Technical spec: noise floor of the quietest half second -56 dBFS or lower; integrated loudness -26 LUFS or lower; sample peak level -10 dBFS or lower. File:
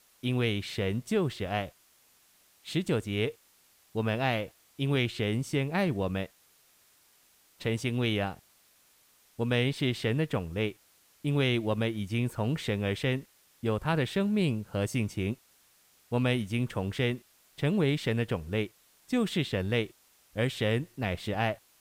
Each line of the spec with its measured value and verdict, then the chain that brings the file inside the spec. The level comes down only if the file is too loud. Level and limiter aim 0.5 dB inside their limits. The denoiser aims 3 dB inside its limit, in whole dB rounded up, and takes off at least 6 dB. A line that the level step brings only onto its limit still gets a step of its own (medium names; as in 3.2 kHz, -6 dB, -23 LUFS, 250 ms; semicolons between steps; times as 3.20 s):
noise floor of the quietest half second -64 dBFS: pass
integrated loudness -30.5 LUFS: pass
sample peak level -12.5 dBFS: pass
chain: none needed